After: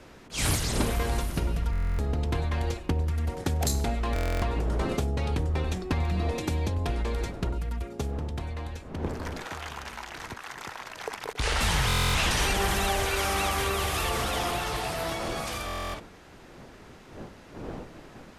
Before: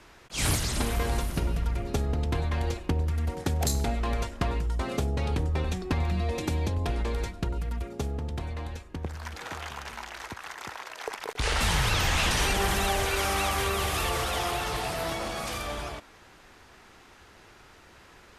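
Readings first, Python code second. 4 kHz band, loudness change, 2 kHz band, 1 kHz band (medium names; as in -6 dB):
0.0 dB, 0.0 dB, 0.0 dB, 0.0 dB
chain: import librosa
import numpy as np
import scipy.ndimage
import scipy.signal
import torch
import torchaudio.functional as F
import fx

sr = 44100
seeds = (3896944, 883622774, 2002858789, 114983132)

y = fx.dmg_wind(x, sr, seeds[0], corner_hz=440.0, level_db=-43.0)
y = fx.buffer_glitch(y, sr, at_s=(1.71, 4.14, 11.87, 15.66), block=1024, repeats=11)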